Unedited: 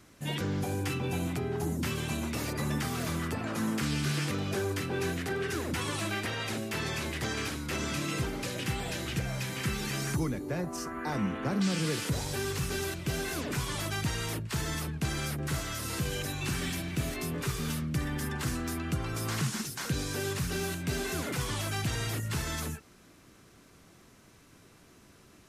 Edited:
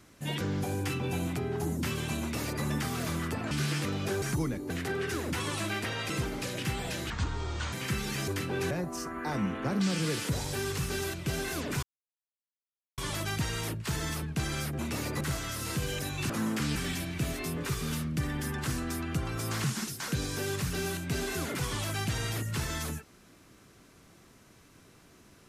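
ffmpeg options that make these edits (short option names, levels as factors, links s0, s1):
-filter_complex "[0:a]asplit=14[s0][s1][s2][s3][s4][s5][s6][s7][s8][s9][s10][s11][s12][s13];[s0]atrim=end=3.512[s14];[s1]atrim=start=3.968:end=4.682[s15];[s2]atrim=start=10.028:end=10.512[s16];[s3]atrim=start=5.108:end=6.512[s17];[s4]atrim=start=8.108:end=9.114[s18];[s5]atrim=start=9.11:end=9.48,asetpts=PTS-STARTPTS,asetrate=26019,aresample=44100[s19];[s6]atrim=start=9.476:end=10.032[s20];[s7]atrim=start=4.678:end=5.112[s21];[s8]atrim=start=10.508:end=13.63,asetpts=PTS-STARTPTS,afade=t=out:st=3.118:d=0.004:c=hsin,apad=pad_dur=1.15[s22];[s9]atrim=start=13.63:end=15.442,asetpts=PTS-STARTPTS,afade=t=in:d=0.004:c=hsin[s23];[s10]atrim=start=2.208:end=2.632[s24];[s11]atrim=start=15.438:end=16.532[s25];[s12]atrim=start=3.508:end=3.972[s26];[s13]atrim=start=16.528[s27];[s14][s15]acrossfade=d=0.004:c1=hsin:c2=hsin[s28];[s28][s16]acrossfade=d=0.004:c1=hsin:c2=hsin[s29];[s29][s17]acrossfade=d=0.004:c1=hsin:c2=hsin[s30];[s30][s18]acrossfade=d=0.004:c1=hsin:c2=hsin[s31];[s31][s19]acrossfade=d=0.004:c1=hsin:c2=hsin[s32];[s32][s20]acrossfade=d=0.004:c1=hsin:c2=hsin[s33];[s33][s21]acrossfade=d=0.004:c1=hsin:c2=hsin[s34];[s22][s23]concat=n=2:v=0:a=1[s35];[s34][s35]acrossfade=d=0.004:c1=hsin:c2=hsin[s36];[s36][s24]acrossfade=d=0.004:c1=hsin:c2=hsin[s37];[s37][s25]acrossfade=d=0.004:c1=hsin:c2=hsin[s38];[s38][s26]acrossfade=d=0.004:c1=hsin:c2=hsin[s39];[s39][s27]acrossfade=d=0.004:c1=hsin:c2=hsin"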